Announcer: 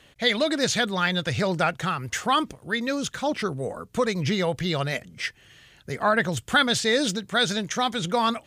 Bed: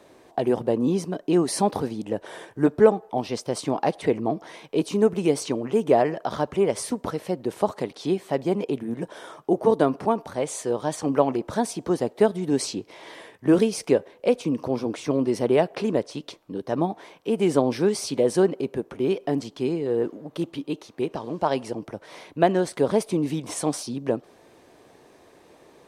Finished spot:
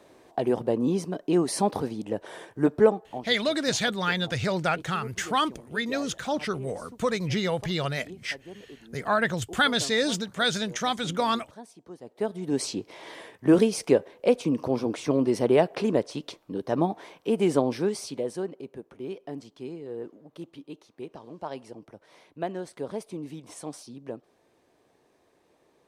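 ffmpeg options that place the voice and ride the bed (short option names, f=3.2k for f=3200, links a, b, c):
-filter_complex "[0:a]adelay=3050,volume=-2.5dB[a];[1:a]volume=17.5dB,afade=t=out:st=2.81:d=0.57:silence=0.125893,afade=t=in:st=12.02:d=0.81:silence=0.1,afade=t=out:st=17.25:d=1.14:silence=0.251189[b];[a][b]amix=inputs=2:normalize=0"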